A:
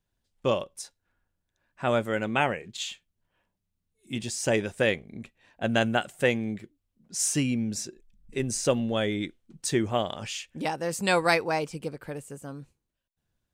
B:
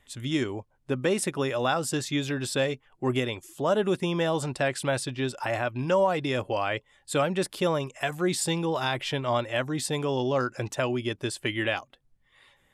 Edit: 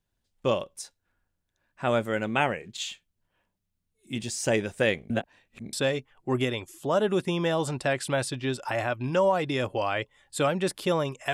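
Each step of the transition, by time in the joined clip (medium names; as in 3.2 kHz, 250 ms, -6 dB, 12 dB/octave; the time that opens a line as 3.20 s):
A
5.10–5.73 s: reverse
5.73 s: go over to B from 2.48 s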